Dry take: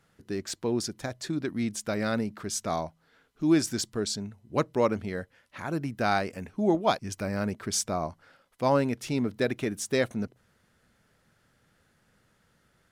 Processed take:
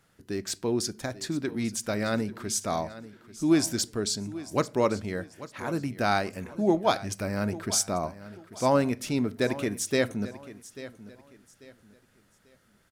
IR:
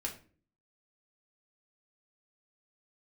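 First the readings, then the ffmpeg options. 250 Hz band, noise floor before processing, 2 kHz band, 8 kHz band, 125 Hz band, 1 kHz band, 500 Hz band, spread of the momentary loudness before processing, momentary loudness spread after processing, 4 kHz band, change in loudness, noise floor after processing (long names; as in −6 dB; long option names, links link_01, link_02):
+0.5 dB, −69 dBFS, +1.0 dB, +3.5 dB, +0.5 dB, +0.5 dB, +1.0 dB, 11 LU, 15 LU, +2.0 dB, +1.0 dB, −65 dBFS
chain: -filter_complex "[0:a]highshelf=frequency=6700:gain=5.5,aecho=1:1:841|1682|2523:0.158|0.0475|0.0143,asplit=2[link_01][link_02];[1:a]atrim=start_sample=2205[link_03];[link_02][link_03]afir=irnorm=-1:irlink=0,volume=-12.5dB[link_04];[link_01][link_04]amix=inputs=2:normalize=0,volume=-1dB"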